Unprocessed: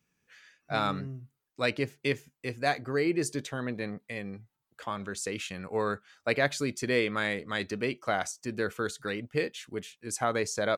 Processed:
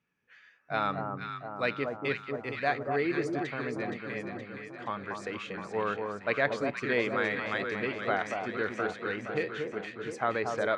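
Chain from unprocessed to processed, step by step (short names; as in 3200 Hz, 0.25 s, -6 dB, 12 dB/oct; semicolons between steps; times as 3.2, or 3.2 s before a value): LPF 2100 Hz 12 dB/oct; tilt +2 dB/oct; echo with dull and thin repeats by turns 0.235 s, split 1200 Hz, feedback 77%, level -4 dB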